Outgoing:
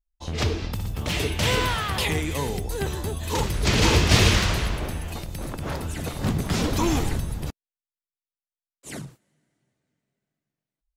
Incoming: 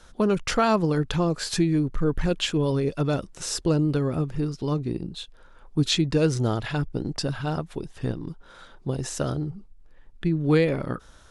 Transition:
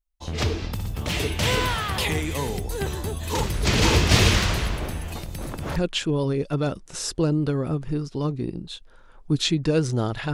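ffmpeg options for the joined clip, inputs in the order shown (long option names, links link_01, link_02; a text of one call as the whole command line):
ffmpeg -i cue0.wav -i cue1.wav -filter_complex "[0:a]apad=whole_dur=10.33,atrim=end=10.33,atrim=end=5.762[link_01];[1:a]atrim=start=2.228:end=6.8[link_02];[link_01][link_02]acrossfade=duration=0.004:curve1=hsin:curve2=hsin" out.wav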